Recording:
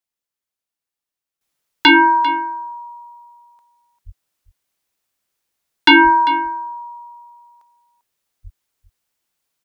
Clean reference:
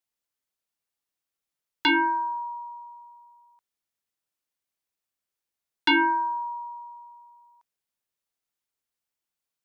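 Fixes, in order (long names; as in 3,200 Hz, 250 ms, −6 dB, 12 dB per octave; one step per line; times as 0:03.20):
high-pass at the plosives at 0:04.05/0:06.03/0:08.43
echo removal 396 ms −16 dB
level correction −11.5 dB, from 0:01.41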